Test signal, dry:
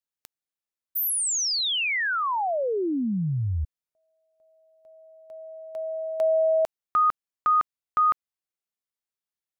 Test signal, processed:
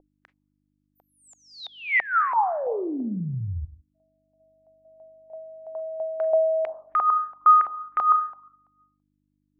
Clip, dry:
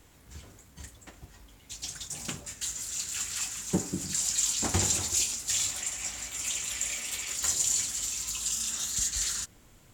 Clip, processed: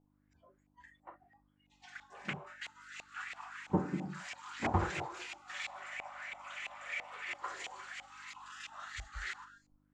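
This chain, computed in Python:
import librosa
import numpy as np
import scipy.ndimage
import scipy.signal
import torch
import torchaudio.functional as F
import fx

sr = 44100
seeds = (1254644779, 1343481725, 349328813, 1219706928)

y = fx.rev_schroeder(x, sr, rt60_s=0.91, comb_ms=30, drr_db=10.0)
y = fx.dmg_buzz(y, sr, base_hz=50.0, harmonics=6, level_db=-46.0, tilt_db=0, odd_only=False)
y = fx.noise_reduce_blind(y, sr, reduce_db=25)
y = fx.filter_lfo_lowpass(y, sr, shape='saw_up', hz=3.0, low_hz=750.0, high_hz=2300.0, q=3.6)
y = F.gain(torch.from_numpy(y), -3.5).numpy()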